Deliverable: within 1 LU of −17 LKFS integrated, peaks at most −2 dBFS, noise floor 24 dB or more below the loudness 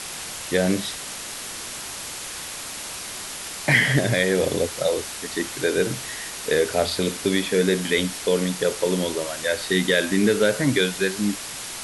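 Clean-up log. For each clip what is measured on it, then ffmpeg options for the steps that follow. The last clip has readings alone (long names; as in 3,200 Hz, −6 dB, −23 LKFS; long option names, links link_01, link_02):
background noise floor −34 dBFS; target noise floor −48 dBFS; integrated loudness −23.5 LKFS; sample peak −5.5 dBFS; target loudness −17.0 LKFS
→ -af "afftdn=noise_reduction=14:noise_floor=-34"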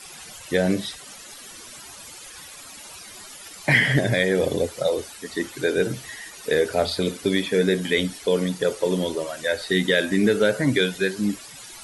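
background noise floor −42 dBFS; target noise floor −47 dBFS
→ -af "afftdn=noise_reduction=6:noise_floor=-42"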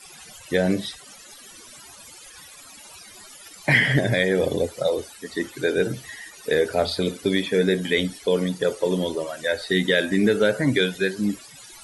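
background noise floor −45 dBFS; target noise floor −47 dBFS
→ -af "afftdn=noise_reduction=6:noise_floor=-45"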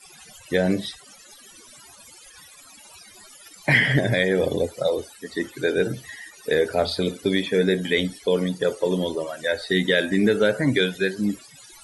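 background noise floor −48 dBFS; integrated loudness −23.0 LKFS; sample peak −6.0 dBFS; target loudness −17.0 LKFS
→ -af "volume=6dB,alimiter=limit=-2dB:level=0:latency=1"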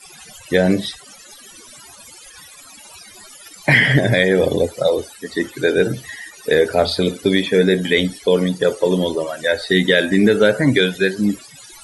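integrated loudness −17.0 LKFS; sample peak −2.0 dBFS; background noise floor −42 dBFS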